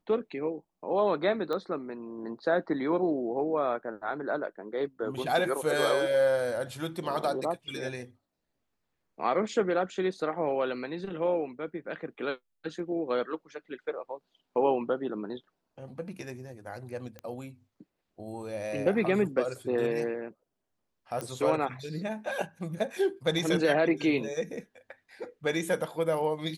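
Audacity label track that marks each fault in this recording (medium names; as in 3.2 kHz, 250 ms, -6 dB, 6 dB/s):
1.530000	1.530000	pop -22 dBFS
17.190000	17.190000	pop -27 dBFS
21.210000	21.210000	pop -20 dBFS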